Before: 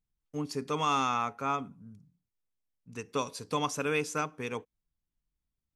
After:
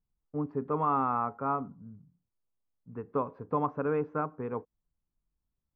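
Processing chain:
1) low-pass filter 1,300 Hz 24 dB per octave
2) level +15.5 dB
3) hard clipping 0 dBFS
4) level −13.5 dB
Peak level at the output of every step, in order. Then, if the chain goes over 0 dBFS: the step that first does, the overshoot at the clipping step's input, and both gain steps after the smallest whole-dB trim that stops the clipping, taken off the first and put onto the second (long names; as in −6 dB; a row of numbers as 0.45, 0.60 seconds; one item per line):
−18.0, −2.5, −2.5, −16.0 dBFS
no step passes full scale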